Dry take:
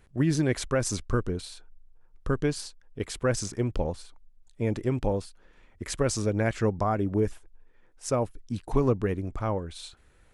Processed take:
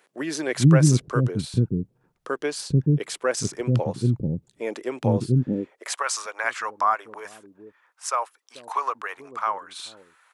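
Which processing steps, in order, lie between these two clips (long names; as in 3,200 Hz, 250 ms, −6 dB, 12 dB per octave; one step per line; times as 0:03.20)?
multiband delay without the direct sound highs, lows 440 ms, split 370 Hz
high-pass filter sweep 140 Hz → 1,100 Hz, 0:05.36–0:06.04
level +4.5 dB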